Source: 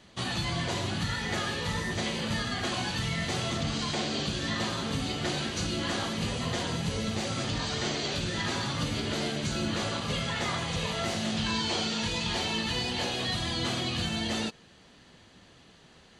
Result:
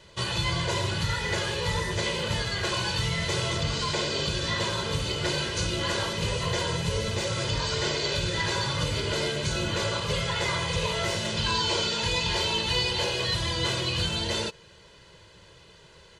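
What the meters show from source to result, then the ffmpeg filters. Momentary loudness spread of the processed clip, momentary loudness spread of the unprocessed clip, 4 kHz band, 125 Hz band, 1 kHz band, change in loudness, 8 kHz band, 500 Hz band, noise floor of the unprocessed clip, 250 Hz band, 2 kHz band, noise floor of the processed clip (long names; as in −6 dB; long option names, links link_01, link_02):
3 LU, 2 LU, +4.0 dB, +3.5 dB, +3.0 dB, +3.5 dB, +3.5 dB, +5.0 dB, −56 dBFS, −2.5 dB, +3.5 dB, −53 dBFS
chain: -af "aecho=1:1:2:0.84,volume=1.5dB"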